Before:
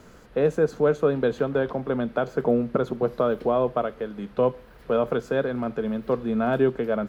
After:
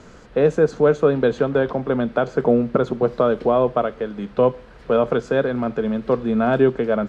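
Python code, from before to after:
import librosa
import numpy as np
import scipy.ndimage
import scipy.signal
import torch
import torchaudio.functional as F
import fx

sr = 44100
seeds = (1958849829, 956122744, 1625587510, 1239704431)

y = scipy.signal.sosfilt(scipy.signal.butter(4, 8200.0, 'lowpass', fs=sr, output='sos'), x)
y = F.gain(torch.from_numpy(y), 5.0).numpy()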